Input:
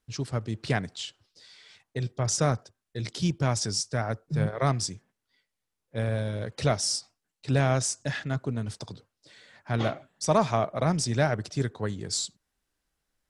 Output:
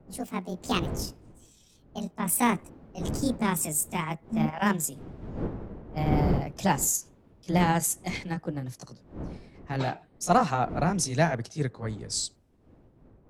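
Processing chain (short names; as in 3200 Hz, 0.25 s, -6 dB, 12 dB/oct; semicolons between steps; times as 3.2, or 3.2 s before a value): gliding pitch shift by +10 st ending unshifted; wind noise 310 Hz -38 dBFS; three-band expander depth 40%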